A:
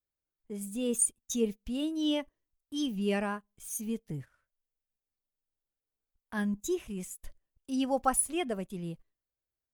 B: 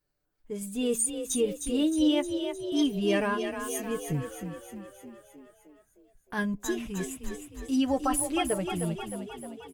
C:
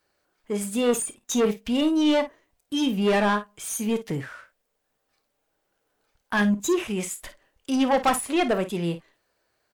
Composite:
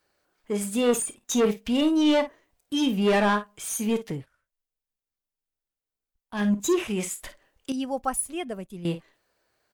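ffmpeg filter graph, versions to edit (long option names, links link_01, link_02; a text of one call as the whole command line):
ffmpeg -i take0.wav -i take1.wav -i take2.wav -filter_complex "[0:a]asplit=2[link_01][link_02];[2:a]asplit=3[link_03][link_04][link_05];[link_03]atrim=end=4.27[link_06];[link_01]atrim=start=4.03:end=6.53[link_07];[link_04]atrim=start=6.29:end=7.722[link_08];[link_02]atrim=start=7.718:end=8.852[link_09];[link_05]atrim=start=8.848[link_10];[link_06][link_07]acrossfade=duration=0.24:curve1=tri:curve2=tri[link_11];[link_11][link_08]acrossfade=duration=0.24:curve1=tri:curve2=tri[link_12];[link_12][link_09]acrossfade=duration=0.004:curve1=hsin:curve2=hsin[link_13];[link_13][link_10]acrossfade=duration=0.004:curve1=hsin:curve2=hsin" out.wav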